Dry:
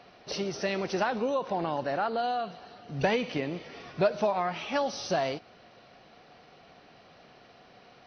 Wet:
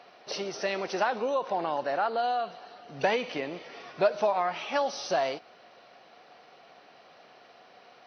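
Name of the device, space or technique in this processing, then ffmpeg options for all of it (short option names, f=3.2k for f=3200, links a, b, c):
filter by subtraction: -filter_complex "[0:a]asplit=2[a][b];[b]lowpass=690,volume=-1[c];[a][c]amix=inputs=2:normalize=0"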